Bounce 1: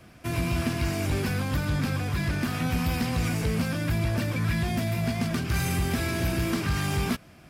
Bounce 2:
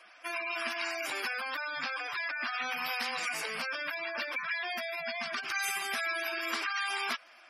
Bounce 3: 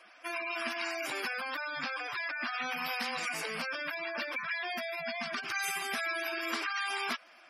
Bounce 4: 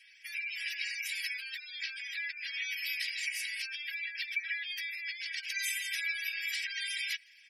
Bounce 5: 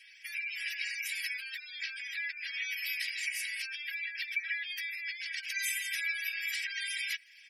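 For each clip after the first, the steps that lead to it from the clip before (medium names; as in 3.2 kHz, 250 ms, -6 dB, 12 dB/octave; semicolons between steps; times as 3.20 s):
high-pass 930 Hz 12 dB/octave; spectral gate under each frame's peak -15 dB strong; trim +3 dB
bass shelf 350 Hz +9 dB; trim -1.5 dB
steep high-pass 1.8 kHz 72 dB/octave; comb 3.1 ms, depth 82%
dynamic bell 4.1 kHz, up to -5 dB, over -49 dBFS, Q 0.8; trim +3 dB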